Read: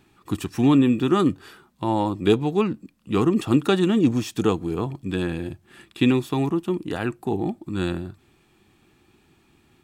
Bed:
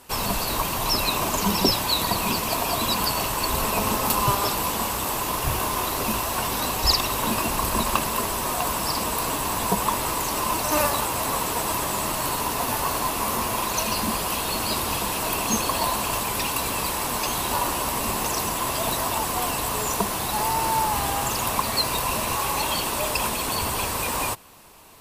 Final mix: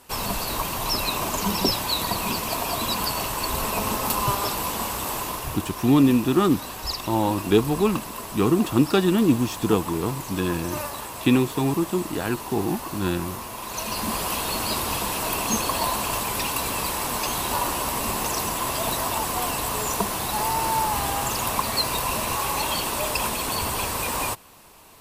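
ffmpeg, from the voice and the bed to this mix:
ffmpeg -i stem1.wav -i stem2.wav -filter_complex "[0:a]adelay=5250,volume=0dB[link_01];[1:a]volume=7dB,afade=type=out:start_time=5.18:duration=0.43:silence=0.421697,afade=type=in:start_time=13.59:duration=0.63:silence=0.354813[link_02];[link_01][link_02]amix=inputs=2:normalize=0" out.wav

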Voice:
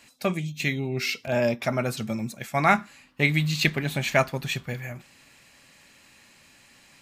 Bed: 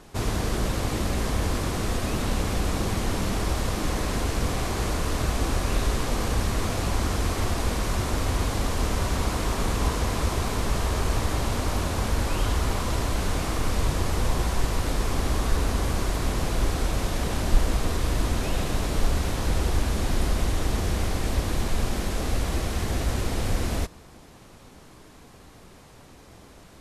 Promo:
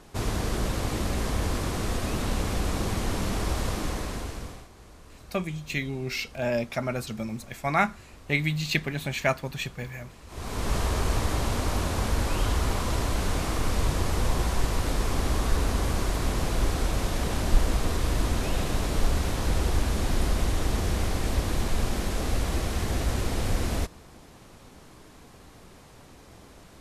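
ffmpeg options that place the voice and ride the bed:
ffmpeg -i stem1.wav -i stem2.wav -filter_complex "[0:a]adelay=5100,volume=-3.5dB[link_01];[1:a]volume=20.5dB,afade=type=out:start_time=3.69:duration=0.99:silence=0.0841395,afade=type=in:start_time=10.27:duration=0.47:silence=0.0749894[link_02];[link_01][link_02]amix=inputs=2:normalize=0" out.wav

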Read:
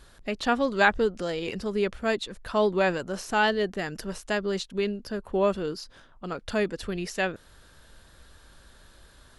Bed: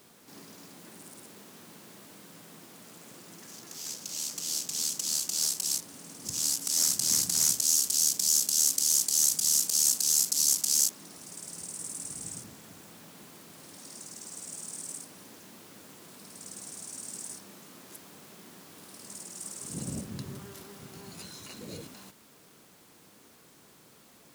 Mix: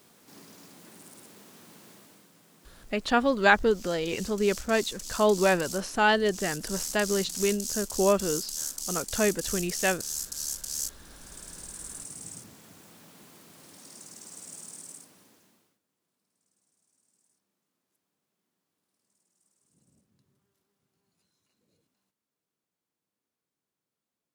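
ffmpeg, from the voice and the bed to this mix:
ffmpeg -i stem1.wav -i stem2.wav -filter_complex "[0:a]adelay=2650,volume=1dB[link_01];[1:a]volume=5dB,afade=type=out:start_time=1.89:duration=0.42:silence=0.421697,afade=type=in:start_time=10.72:duration=0.68:silence=0.473151,afade=type=out:start_time=14.56:duration=1.23:silence=0.0334965[link_02];[link_01][link_02]amix=inputs=2:normalize=0" out.wav

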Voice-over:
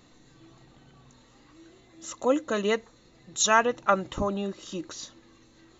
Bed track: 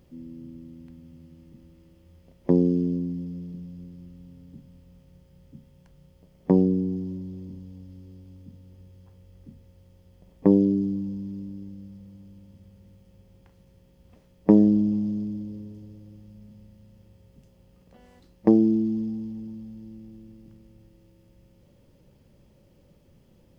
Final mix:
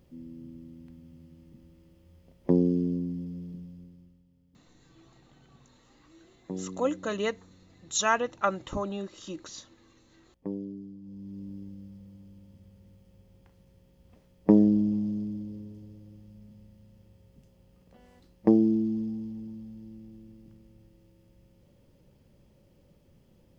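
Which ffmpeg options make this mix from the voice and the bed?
ffmpeg -i stem1.wav -i stem2.wav -filter_complex "[0:a]adelay=4550,volume=-4dB[link_01];[1:a]volume=11.5dB,afade=type=out:start_time=3.52:duration=0.72:silence=0.188365,afade=type=in:start_time=11.01:duration=0.52:silence=0.188365[link_02];[link_01][link_02]amix=inputs=2:normalize=0" out.wav

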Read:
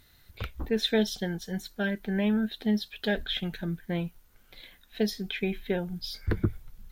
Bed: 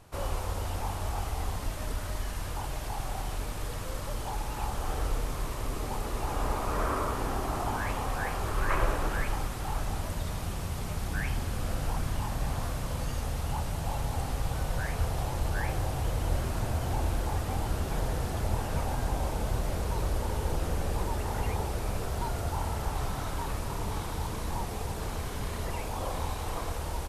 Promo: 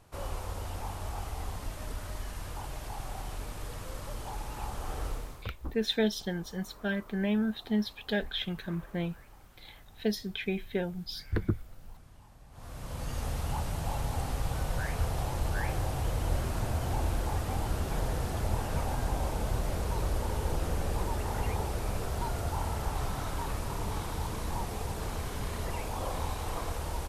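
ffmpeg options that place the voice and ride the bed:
ffmpeg -i stem1.wav -i stem2.wav -filter_complex "[0:a]adelay=5050,volume=-2.5dB[link_01];[1:a]volume=18dB,afade=type=out:start_time=5.07:duration=0.41:silence=0.112202,afade=type=in:start_time=12.51:duration=0.76:silence=0.0749894[link_02];[link_01][link_02]amix=inputs=2:normalize=0" out.wav

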